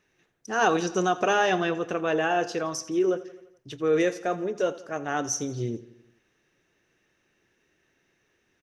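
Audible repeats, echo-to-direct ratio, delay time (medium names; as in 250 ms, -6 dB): 4, -15.5 dB, 85 ms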